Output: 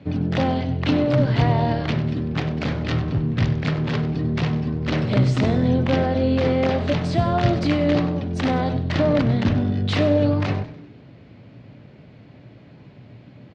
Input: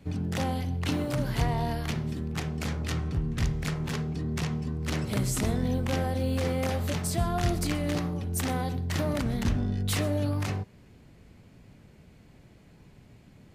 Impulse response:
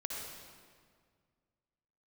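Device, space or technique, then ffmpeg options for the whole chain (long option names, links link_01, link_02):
frequency-shifting delay pedal into a guitar cabinet: -filter_complex "[0:a]asplit=5[link_01][link_02][link_03][link_04][link_05];[link_02]adelay=97,afreqshift=-130,volume=-13dB[link_06];[link_03]adelay=194,afreqshift=-260,volume=-19.9dB[link_07];[link_04]adelay=291,afreqshift=-390,volume=-26.9dB[link_08];[link_05]adelay=388,afreqshift=-520,volume=-33.8dB[link_09];[link_01][link_06][link_07][link_08][link_09]amix=inputs=5:normalize=0,highpass=100,equalizer=frequency=120:width_type=q:width=4:gain=8,equalizer=frequency=280:width_type=q:width=4:gain=5,equalizer=frequency=590:width_type=q:width=4:gain=6,lowpass=frequency=4400:width=0.5412,lowpass=frequency=4400:width=1.3066,volume=7dB"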